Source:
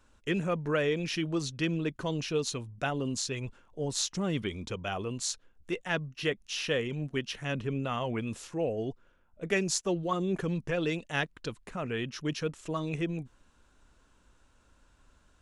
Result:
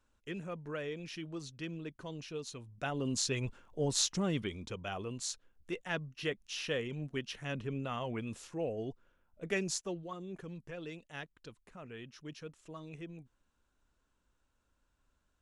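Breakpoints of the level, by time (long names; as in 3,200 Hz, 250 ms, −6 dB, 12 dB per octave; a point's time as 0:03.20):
0:02.51 −11.5 dB
0:03.23 +0.5 dB
0:04.05 +0.5 dB
0:04.59 −5.5 dB
0:09.70 −5.5 dB
0:10.16 −14 dB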